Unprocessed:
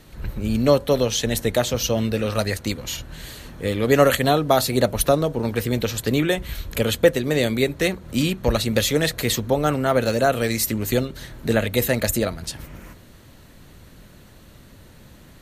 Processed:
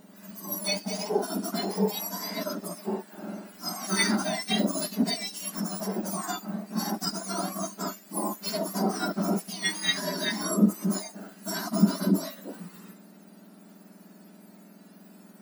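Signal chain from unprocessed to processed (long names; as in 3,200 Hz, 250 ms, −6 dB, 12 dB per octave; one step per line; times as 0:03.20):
frequency axis turned over on the octave scale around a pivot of 1,600 Hz
harmonic and percussive parts rebalanced percussive −15 dB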